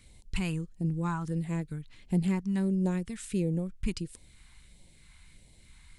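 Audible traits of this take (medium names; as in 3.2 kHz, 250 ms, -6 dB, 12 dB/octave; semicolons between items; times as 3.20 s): phasing stages 2, 1.5 Hz, lowest notch 490–1300 Hz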